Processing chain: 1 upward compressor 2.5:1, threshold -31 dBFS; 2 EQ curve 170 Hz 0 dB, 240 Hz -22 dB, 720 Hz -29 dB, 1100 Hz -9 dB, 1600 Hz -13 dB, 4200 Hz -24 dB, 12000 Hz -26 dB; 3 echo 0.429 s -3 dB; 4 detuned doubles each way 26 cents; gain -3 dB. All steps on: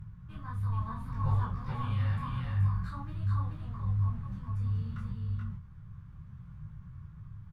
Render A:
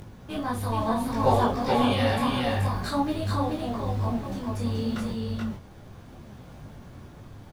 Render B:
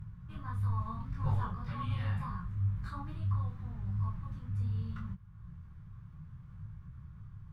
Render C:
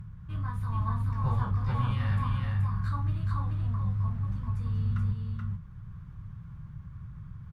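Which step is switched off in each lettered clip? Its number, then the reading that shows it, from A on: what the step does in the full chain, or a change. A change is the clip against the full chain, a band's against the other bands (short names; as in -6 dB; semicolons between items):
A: 2, 125 Hz band -14.5 dB; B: 3, momentary loudness spread change -2 LU; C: 4, crest factor change -2.5 dB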